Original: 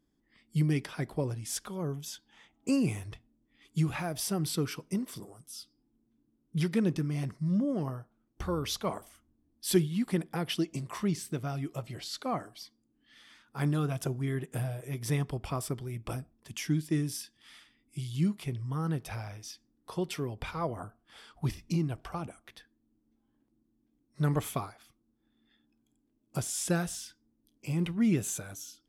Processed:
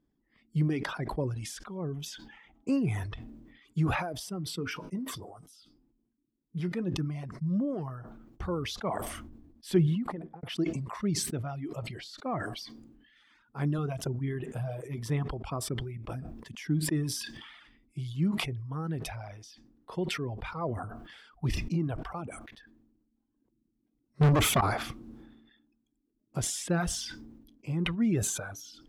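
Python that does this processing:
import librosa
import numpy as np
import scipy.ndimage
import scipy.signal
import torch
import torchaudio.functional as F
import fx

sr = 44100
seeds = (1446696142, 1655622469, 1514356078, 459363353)

y = fx.comb_fb(x, sr, f0_hz=89.0, decay_s=0.15, harmonics='all', damping=0.0, mix_pct=70, at=(4.19, 6.94))
y = fx.studio_fade_out(y, sr, start_s=9.72, length_s=0.71)
y = fx.low_shelf(y, sr, hz=95.0, db=6.0, at=(13.78, 14.44))
y = fx.leveller(y, sr, passes=5, at=(24.21, 24.61))
y = fx.lowpass(y, sr, hz=1800.0, slope=6)
y = fx.dereverb_blind(y, sr, rt60_s=1.5)
y = fx.sustainer(y, sr, db_per_s=44.0)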